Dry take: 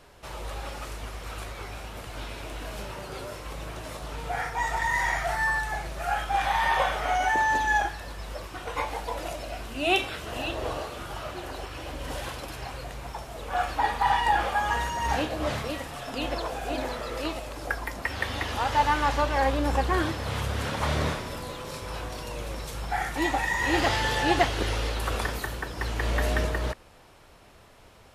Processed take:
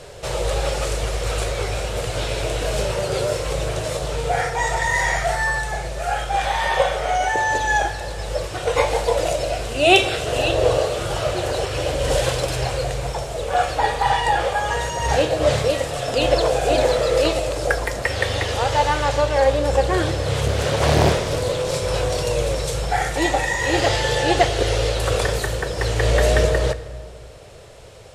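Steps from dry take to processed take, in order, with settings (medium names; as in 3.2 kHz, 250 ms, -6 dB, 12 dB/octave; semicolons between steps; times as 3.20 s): treble shelf 7.5 kHz -8.5 dB; reverberation RT60 2.2 s, pre-delay 32 ms, DRR 13.5 dB; gain riding within 5 dB 2 s; graphic EQ 125/250/500/1000/4000/8000 Hz +8/-9/+12/-5/+3/+11 dB; 20.46–21.75 s: loudspeaker Doppler distortion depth 0.9 ms; trim +5.5 dB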